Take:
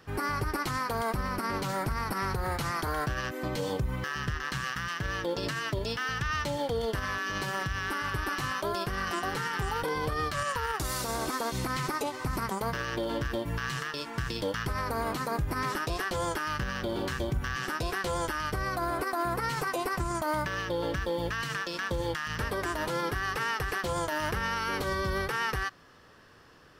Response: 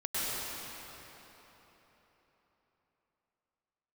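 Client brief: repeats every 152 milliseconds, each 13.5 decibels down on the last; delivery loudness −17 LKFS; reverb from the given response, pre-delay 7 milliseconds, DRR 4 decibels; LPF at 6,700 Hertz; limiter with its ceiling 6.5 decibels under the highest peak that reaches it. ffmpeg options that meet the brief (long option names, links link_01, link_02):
-filter_complex "[0:a]lowpass=6700,alimiter=level_in=5.5dB:limit=-24dB:level=0:latency=1,volume=-5.5dB,aecho=1:1:152|304:0.211|0.0444,asplit=2[link_01][link_02];[1:a]atrim=start_sample=2205,adelay=7[link_03];[link_02][link_03]afir=irnorm=-1:irlink=0,volume=-12.5dB[link_04];[link_01][link_04]amix=inputs=2:normalize=0,volume=18.5dB"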